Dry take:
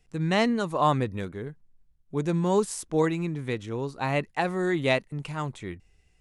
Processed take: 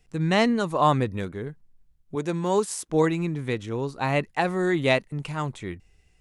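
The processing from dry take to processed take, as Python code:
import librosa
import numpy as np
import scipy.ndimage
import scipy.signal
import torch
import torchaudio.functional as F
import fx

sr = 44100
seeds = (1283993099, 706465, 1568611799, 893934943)

y = fx.highpass(x, sr, hz=300.0, slope=6, at=(2.15, 2.89))
y = F.gain(torch.from_numpy(y), 2.5).numpy()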